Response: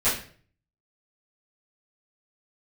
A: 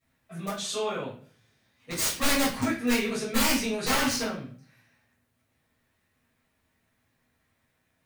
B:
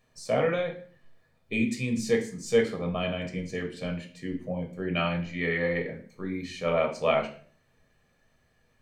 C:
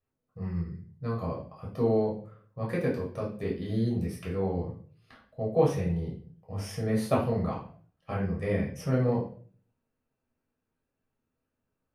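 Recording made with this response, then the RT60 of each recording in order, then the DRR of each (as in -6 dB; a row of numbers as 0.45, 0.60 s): A; 0.45, 0.45, 0.45 s; -14.5, 2.5, -5.0 dB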